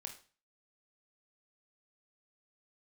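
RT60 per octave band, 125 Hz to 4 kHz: 0.50, 0.40, 0.40, 0.40, 0.40, 0.40 seconds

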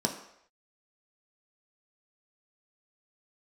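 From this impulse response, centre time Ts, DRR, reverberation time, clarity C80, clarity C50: 20 ms, 1.5 dB, non-exponential decay, 11.0 dB, 9.0 dB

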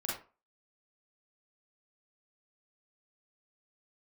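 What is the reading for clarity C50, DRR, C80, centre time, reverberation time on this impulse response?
2.5 dB, −6.0 dB, 9.5 dB, 46 ms, 0.35 s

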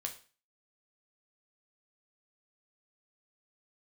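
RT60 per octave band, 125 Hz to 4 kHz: 0.40, 0.40, 0.35, 0.40, 0.40, 0.40 seconds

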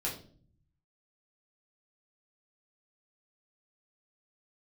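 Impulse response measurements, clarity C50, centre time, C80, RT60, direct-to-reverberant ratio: 8.0 dB, 26 ms, 12.5 dB, 0.45 s, −5.5 dB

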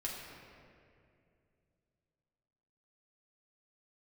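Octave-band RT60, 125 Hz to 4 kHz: 3.5, 3.1, 2.8, 2.1, 2.1, 1.5 seconds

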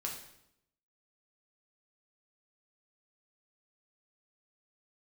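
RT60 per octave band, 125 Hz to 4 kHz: 0.95, 0.95, 0.80, 0.75, 0.70, 0.70 seconds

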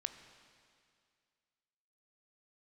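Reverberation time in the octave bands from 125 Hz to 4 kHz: 2.2, 2.2, 2.2, 2.2, 2.2, 2.2 seconds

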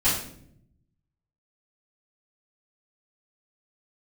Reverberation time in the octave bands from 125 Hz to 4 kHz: 1.5, 1.1, 0.85, 0.50, 0.50, 0.45 seconds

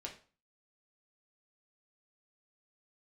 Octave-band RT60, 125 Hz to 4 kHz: 0.45, 0.45, 0.40, 0.40, 0.35, 0.35 seconds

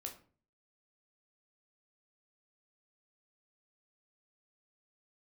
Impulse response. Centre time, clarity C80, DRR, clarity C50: 15 ms, 15.5 dB, 2.0 dB, 11.0 dB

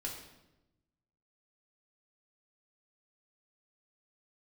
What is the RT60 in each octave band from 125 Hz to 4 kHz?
1.5, 1.3, 1.1, 0.85, 0.80, 0.75 seconds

